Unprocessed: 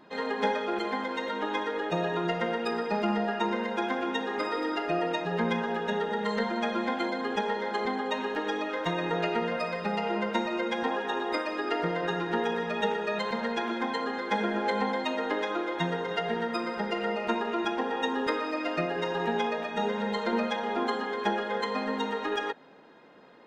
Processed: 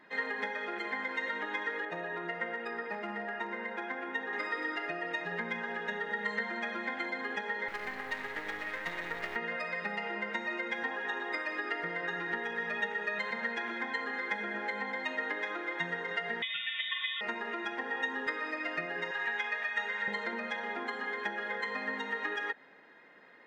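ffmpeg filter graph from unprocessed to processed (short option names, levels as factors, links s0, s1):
-filter_complex "[0:a]asettb=1/sr,asplit=3[s0][s1][s2];[s0]atrim=end=1.854[s3];[s1]atrim=start=1.85:end=4.33,asetpts=PTS-STARTPTS,afade=t=in:d=0.004:c=qsin,afade=t=out:st=2.476:d=0.004:c=qsin,highshelf=f=2600:g=-11.5,asoftclip=type=hard:threshold=0.0891,highpass=f=230:p=1[s4];[s2]atrim=start=4.326[s5];[s3][s4]acrossfade=d=0.004:c1=hsin:c2=qsin[s6];[s6][s5]acrossfade=d=0.004:c1=qsin:c2=hsin,asettb=1/sr,asplit=3[s7][s8][s9];[s7]atrim=end=7.684[s10];[s8]atrim=start=7.68:end=9.36,asetpts=PTS-STARTPTS,afade=t=in:d=0.004:c=qsin,afade=t=out:st=1.676:d=0.004:c=qsin,highpass=f=62:w=0.5412,highpass=f=62:w=1.3066,aeval=exprs='max(val(0),0)':c=same,acrusher=bits=7:mode=log:mix=0:aa=0.000001[s11];[s9]atrim=start=9.356[s12];[s10][s11]acrossfade=d=0.004:c1=hsin:c2=qsin[s13];[s13][s12]acrossfade=d=0.004:c1=qsin:c2=hsin,asettb=1/sr,asplit=3[s14][s15][s16];[s14]atrim=end=16.424[s17];[s15]atrim=start=16.42:end=17.21,asetpts=PTS-STARTPTS,afade=t=in:d=0.004:c=qsin,afade=t=out:st=0.786:d=0.004:c=qsin,asplit=2[s18][s19];[s19]adelay=48,volume=0.282[s20];[s18][s20]amix=inputs=2:normalize=0,atrim=end_sample=34839,lowpass=f=3300:t=q:w=0.5098,lowpass=f=3300:t=q:w=0.6013,lowpass=f=3300:t=q:w=0.9,lowpass=f=3300:t=q:w=2.563,afreqshift=-3900[s21];[s16]atrim=start=17.206[s22];[s17][s21]acrossfade=d=0.004:c1=hsin:c2=qsin[s23];[s23][s22]acrossfade=d=0.004:c1=qsin:c2=hsin,asettb=1/sr,asplit=3[s24][s25][s26];[s24]atrim=end=19.114[s27];[s25]atrim=start=19.11:end=20.08,asetpts=PTS-STARTPTS,afade=t=in:d=0.004:c=qsin,afade=t=out:st=0.966:d=0.004:c=qsin,highpass=f=1200:p=1,equalizer=f=1800:t=o:w=1.5:g=4[s28];[s26]atrim=start=20.076[s29];[s27][s28]acrossfade=d=0.004:c1=hsin:c2=qsin[s30];[s30][s29]acrossfade=d=0.004:c1=qsin:c2=hsin,lowshelf=f=210:g=-5.5,acompressor=threshold=0.0316:ratio=6,equalizer=f=1900:t=o:w=0.57:g=15,volume=0.473"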